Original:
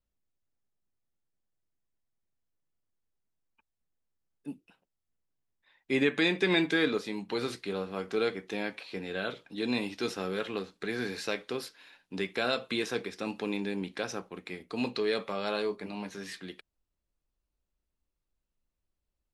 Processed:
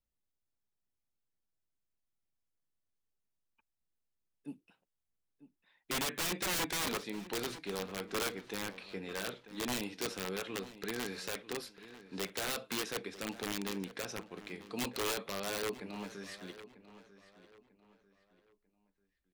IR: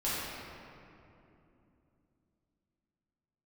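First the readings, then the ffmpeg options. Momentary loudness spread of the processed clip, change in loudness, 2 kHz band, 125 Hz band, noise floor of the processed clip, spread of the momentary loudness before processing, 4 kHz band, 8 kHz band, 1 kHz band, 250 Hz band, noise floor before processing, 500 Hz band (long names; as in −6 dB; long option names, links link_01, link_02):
13 LU, −5.5 dB, −6.5 dB, −6.0 dB, −85 dBFS, 16 LU, −3.0 dB, +9.0 dB, −2.5 dB, −8.5 dB, below −85 dBFS, −8.5 dB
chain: -filter_complex "[0:a]aeval=exprs='(mod(15.8*val(0)+1,2)-1)/15.8':channel_layout=same,asplit=2[link_01][link_02];[link_02]adelay=944,lowpass=frequency=3500:poles=1,volume=-15dB,asplit=2[link_03][link_04];[link_04]adelay=944,lowpass=frequency=3500:poles=1,volume=0.35,asplit=2[link_05][link_06];[link_06]adelay=944,lowpass=frequency=3500:poles=1,volume=0.35[link_07];[link_01][link_03][link_05][link_07]amix=inputs=4:normalize=0,volume=-5dB"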